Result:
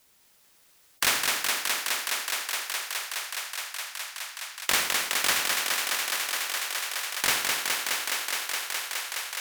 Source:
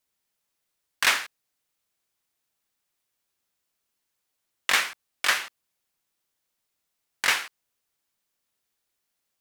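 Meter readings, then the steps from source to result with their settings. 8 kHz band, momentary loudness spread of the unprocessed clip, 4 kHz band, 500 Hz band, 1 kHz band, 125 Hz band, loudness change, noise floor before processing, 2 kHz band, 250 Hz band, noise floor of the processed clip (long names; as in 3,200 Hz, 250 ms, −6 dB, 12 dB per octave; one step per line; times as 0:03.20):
+8.5 dB, 16 LU, +4.5 dB, +5.5 dB, +2.5 dB, can't be measured, −2.0 dB, −80 dBFS, +1.0 dB, +7.0 dB, −61 dBFS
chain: feedback echo with a high-pass in the loop 209 ms, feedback 85%, high-pass 240 Hz, level −5.5 dB
every bin compressed towards the loudest bin 2 to 1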